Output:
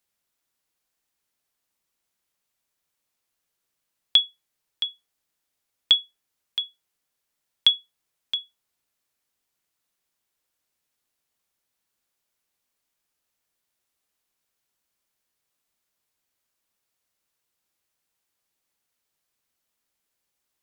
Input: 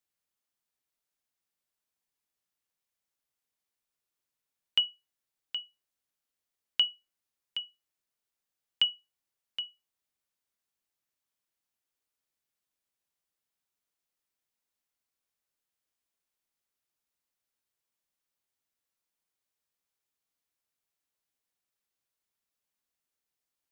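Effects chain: varispeed +15%; gain +8.5 dB

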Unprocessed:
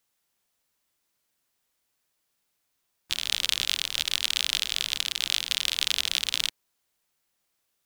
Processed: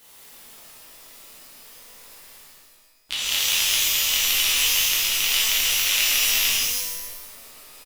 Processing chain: gliding pitch shift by -4 st starting unshifted; fifteen-band EQ 100 Hz -7 dB, 1600 Hz -4 dB, 6300 Hz -5 dB; reverse; upward compressor, threshold -33 dBFS; reverse; echo 0.136 s -4.5 dB; shimmer reverb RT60 1.1 s, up +12 st, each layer -2 dB, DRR -6.5 dB; gain -1.5 dB

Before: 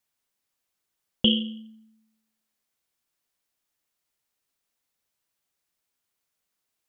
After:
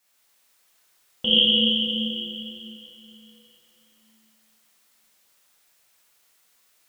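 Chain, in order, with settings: low shelf 370 Hz -10 dB; negative-ratio compressor -28 dBFS, ratio -1; plate-style reverb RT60 3.3 s, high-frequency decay 0.9×, DRR -8 dB; gain +6 dB

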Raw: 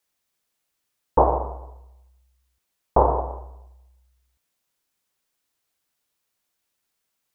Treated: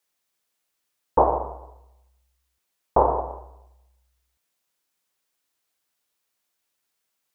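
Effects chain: low shelf 190 Hz -7 dB

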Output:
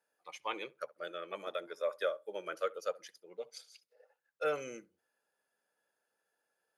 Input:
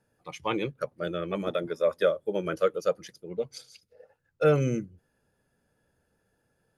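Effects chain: HPF 620 Hz 12 dB/oct; darkening echo 67 ms, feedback 16%, low-pass 1400 Hz, level -20 dB; gain -6 dB

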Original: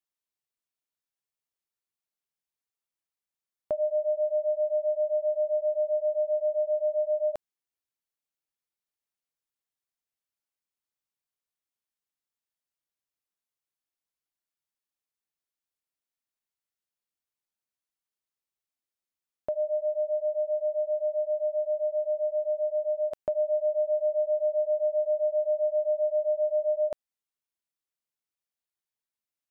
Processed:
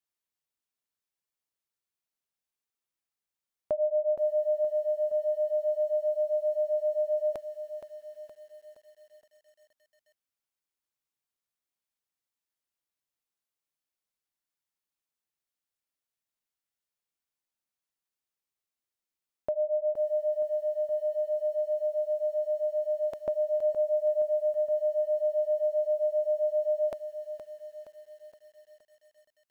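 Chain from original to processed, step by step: lo-fi delay 0.469 s, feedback 55%, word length 10-bit, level -10 dB

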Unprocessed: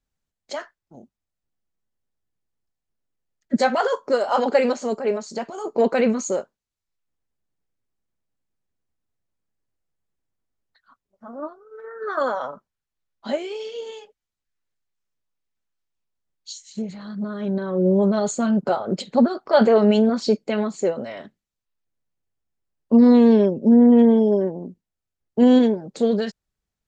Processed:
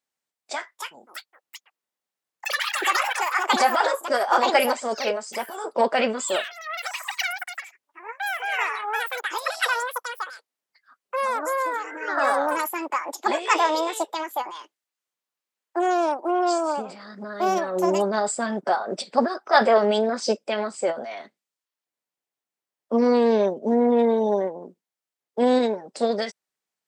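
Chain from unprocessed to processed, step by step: Bessel high-pass 480 Hz, order 2; formant shift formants +2 st; echoes that change speed 0.462 s, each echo +7 st, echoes 3; gain +1.5 dB

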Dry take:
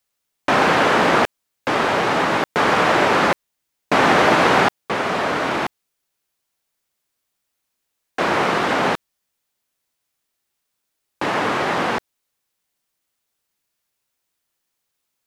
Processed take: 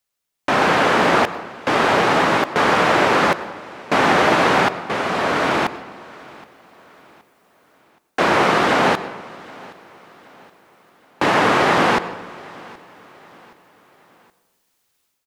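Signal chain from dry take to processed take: AGC; feedback echo 0.772 s, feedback 41%, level -22 dB; on a send at -14 dB: reverb RT60 1.2 s, pre-delay 90 ms; on the sum: gain -3 dB

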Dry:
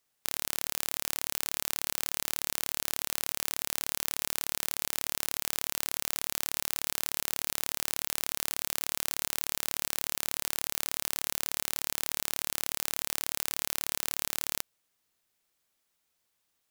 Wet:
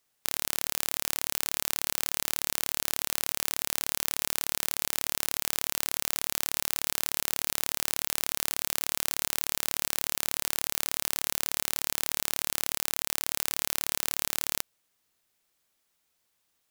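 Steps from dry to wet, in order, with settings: 12.78–13.27 sample leveller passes 5; gain +2.5 dB

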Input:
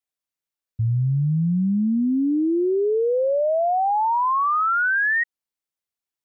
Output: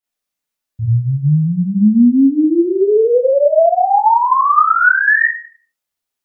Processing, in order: Schroeder reverb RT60 0.46 s, combs from 26 ms, DRR -9 dB; gain -1 dB

